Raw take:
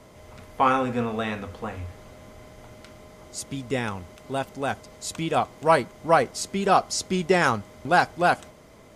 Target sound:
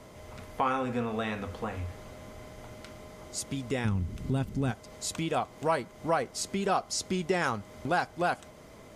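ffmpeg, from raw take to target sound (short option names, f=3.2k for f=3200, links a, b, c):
-filter_complex "[0:a]asplit=3[a][b][c];[a]afade=t=out:st=3.84:d=0.02[d];[b]asubboost=boost=9.5:cutoff=230,afade=t=in:st=3.84:d=0.02,afade=t=out:st=4.7:d=0.02[e];[c]afade=t=in:st=4.7:d=0.02[f];[d][e][f]amix=inputs=3:normalize=0,acompressor=threshold=-31dB:ratio=2"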